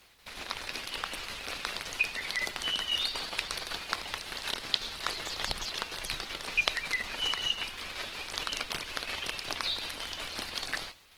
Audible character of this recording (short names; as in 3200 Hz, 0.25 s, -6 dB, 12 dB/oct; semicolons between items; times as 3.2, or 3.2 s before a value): a quantiser's noise floor 10-bit, dither none; tremolo saw down 5.4 Hz, depth 45%; Opus